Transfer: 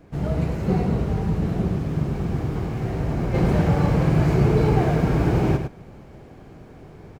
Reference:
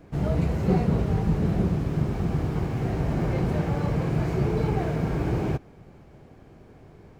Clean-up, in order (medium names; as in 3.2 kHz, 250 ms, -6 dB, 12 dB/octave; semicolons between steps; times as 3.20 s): inverse comb 103 ms -7 dB; trim 0 dB, from 3.34 s -5.5 dB